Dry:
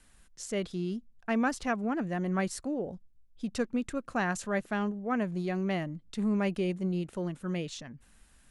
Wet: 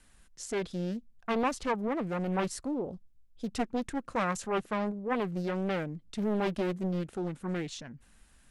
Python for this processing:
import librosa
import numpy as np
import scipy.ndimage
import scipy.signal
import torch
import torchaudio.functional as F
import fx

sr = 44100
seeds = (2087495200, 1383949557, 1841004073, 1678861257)

y = fx.doppler_dist(x, sr, depth_ms=0.83)